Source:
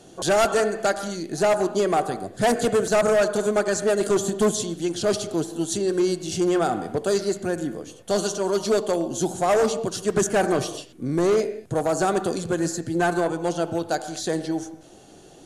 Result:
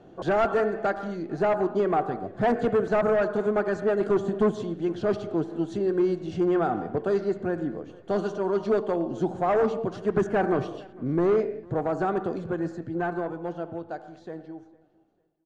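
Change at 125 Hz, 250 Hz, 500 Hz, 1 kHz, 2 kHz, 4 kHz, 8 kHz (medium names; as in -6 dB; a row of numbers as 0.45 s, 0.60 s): -2.0 dB, -2.5 dB, -3.0 dB, -3.0 dB, -5.0 dB, under -15 dB, under -25 dB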